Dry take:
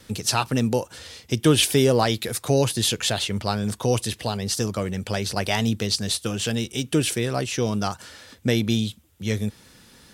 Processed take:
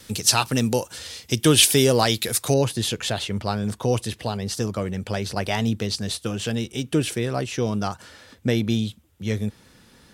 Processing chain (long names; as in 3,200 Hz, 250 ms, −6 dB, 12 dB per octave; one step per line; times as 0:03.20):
high-shelf EQ 2,800 Hz +7 dB, from 0:02.54 −5.5 dB